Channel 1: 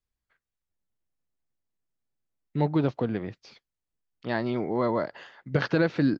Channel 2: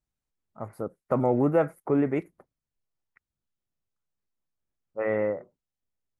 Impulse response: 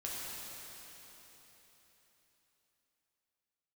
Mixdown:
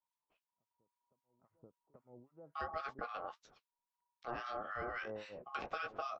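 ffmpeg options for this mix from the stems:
-filter_complex "[0:a]aeval=exprs='val(0)*sin(2*PI*960*n/s)':c=same,flanger=delay=7.9:depth=8.2:regen=-37:speed=1.7:shape=triangular,volume=1.33,asplit=2[s0][s1];[1:a]agate=range=0.355:threshold=0.00282:ratio=16:detection=peak,tiltshelf=f=650:g=5,acompressor=threshold=0.0178:ratio=2.5,volume=0.708,asplit=2[s2][s3];[s3]volume=0.106[s4];[s1]apad=whole_len=273239[s5];[s2][s5]sidechaingate=range=0.00794:threshold=0.00126:ratio=16:detection=peak[s6];[s4]aecho=0:1:834:1[s7];[s0][s6][s7]amix=inputs=3:normalize=0,acrossover=split=1200[s8][s9];[s8]aeval=exprs='val(0)*(1-1/2+1/2*cos(2*PI*3.7*n/s))':c=same[s10];[s9]aeval=exprs='val(0)*(1-1/2-1/2*cos(2*PI*3.7*n/s))':c=same[s11];[s10][s11]amix=inputs=2:normalize=0,acrossover=split=580|3400[s12][s13][s14];[s12]acompressor=threshold=0.00398:ratio=4[s15];[s13]acompressor=threshold=0.00891:ratio=4[s16];[s14]acompressor=threshold=0.00126:ratio=4[s17];[s15][s16][s17]amix=inputs=3:normalize=0"

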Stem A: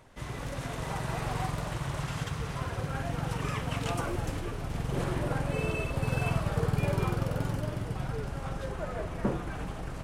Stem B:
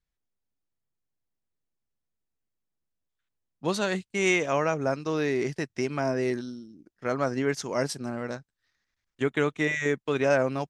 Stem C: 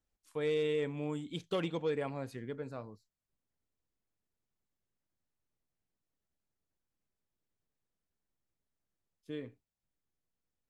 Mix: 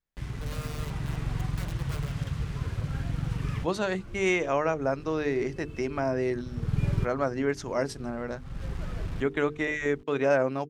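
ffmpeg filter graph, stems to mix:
-filter_complex "[0:a]equalizer=f=690:t=o:w=1.6:g=-10.5,acrusher=bits=6:mix=0:aa=0.000001,aemphasis=mode=reproduction:type=bsi,volume=0.794[s0];[1:a]highshelf=f=2700:g=-8.5,bandreject=f=50:t=h:w=6,bandreject=f=100:t=h:w=6,bandreject=f=150:t=h:w=6,bandreject=f=200:t=h:w=6,bandreject=f=250:t=h:w=6,bandreject=f=300:t=h:w=6,bandreject=f=350:t=h:w=6,bandreject=f=400:t=h:w=6,bandreject=f=450:t=h:w=6,volume=1.06,asplit=2[s1][s2];[2:a]aeval=exprs='(mod(25.1*val(0)+1,2)-1)/25.1':c=same,adelay=50,volume=0.316[s3];[s2]apad=whole_len=442747[s4];[s0][s4]sidechaincompress=threshold=0.00891:ratio=16:attack=9.8:release=327[s5];[s5][s1][s3]amix=inputs=3:normalize=0,lowshelf=f=110:g=-7"

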